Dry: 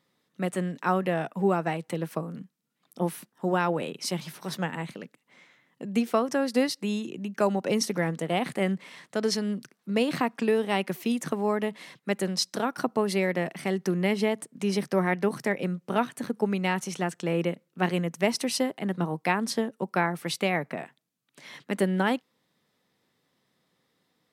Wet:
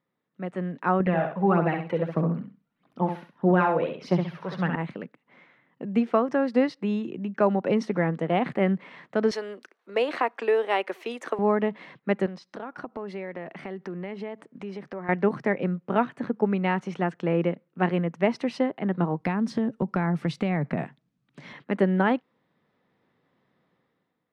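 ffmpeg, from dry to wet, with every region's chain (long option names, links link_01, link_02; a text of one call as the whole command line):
ffmpeg -i in.wav -filter_complex "[0:a]asettb=1/sr,asplit=3[link_01][link_02][link_03];[link_01]atrim=end=1.004[link_04];[link_02]atrim=start=1:end=4.76,asetpts=PTS-STARTPTS,afade=type=in:duration=0.004:curve=qsin,afade=type=out:start_time=3.756:duration=0.004:curve=qsin,equalizer=frequency=8200:width_type=o:width=0.44:gain=-10,aphaser=in_gain=1:out_gain=1:delay=2.2:decay=0.52:speed=1.6:type=triangular,aecho=1:1:66|132|198:0.473|0.104|0.0229,atrim=end_sample=165816[link_05];[link_03]atrim=start=4.756[link_06];[link_04][link_05]acrossfade=duration=0.004:curve1=hsin:curve2=qsin[link_07];[link_07][link_06]acrossfade=duration=0.004:curve1=qsin:curve2=hsin,asettb=1/sr,asplit=3[link_08][link_09][link_10];[link_08]atrim=end=9.314[link_11];[link_09]atrim=start=9.31:end=11.39,asetpts=PTS-STARTPTS,afade=type=in:duration=0.004:curve=qsin,afade=type=out:start_time=2.076:duration=0.004:curve=qsin,highpass=frequency=380:width=0.5412,highpass=frequency=380:width=1.3066,aemphasis=mode=production:type=50fm,bandreject=frequency=5100:width=28[link_12];[link_10]atrim=start=11.386[link_13];[link_11][link_12]acrossfade=duration=0.004:curve1=hsin:curve2=qsin[link_14];[link_14][link_13]acrossfade=duration=0.004:curve1=qsin:curve2=hsin,asettb=1/sr,asplit=3[link_15][link_16][link_17];[link_15]atrim=end=12.264[link_18];[link_16]atrim=start=12.26:end=15.09,asetpts=PTS-STARTPTS,afade=type=in:duration=0.004:curve=qsin,afade=type=out:start_time=2.826:duration=0.004:curve=qsin,bass=frequency=250:gain=-5,treble=frequency=4000:gain=0,acompressor=threshold=-39dB:ratio=3:attack=3.2:release=140:knee=1:detection=peak[link_19];[link_17]atrim=start=15.086[link_20];[link_18][link_19]acrossfade=duration=0.004:curve1=hsin:curve2=qsin[link_21];[link_21][link_20]acrossfade=duration=0.004:curve1=qsin:curve2=hsin,asettb=1/sr,asplit=3[link_22][link_23][link_24];[link_22]atrim=end=19.204[link_25];[link_23]atrim=start=19.2:end=21.53,asetpts=PTS-STARTPTS,afade=type=in:duration=0.004:curve=qsin,afade=type=out:start_time=2.326:duration=0.004:curve=qsin,bass=frequency=250:gain=13,treble=frequency=4000:gain=10,acompressor=threshold=-25dB:ratio=6:attack=3.2:release=140:knee=1:detection=peak[link_26];[link_24]atrim=start=21.526[link_27];[link_25][link_26]acrossfade=duration=0.004:curve1=hsin:curve2=qsin[link_28];[link_28][link_27]acrossfade=duration=0.004:curve1=qsin:curve2=hsin,lowpass=2000,dynaudnorm=framelen=110:gausssize=11:maxgain=11.5dB,volume=-7dB" out.wav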